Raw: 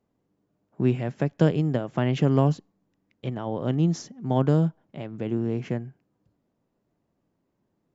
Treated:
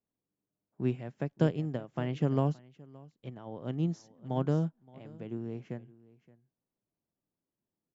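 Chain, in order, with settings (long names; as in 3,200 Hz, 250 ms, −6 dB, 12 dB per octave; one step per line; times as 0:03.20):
single-tap delay 571 ms −15.5 dB
expander for the loud parts 1.5 to 1, over −38 dBFS
level −6 dB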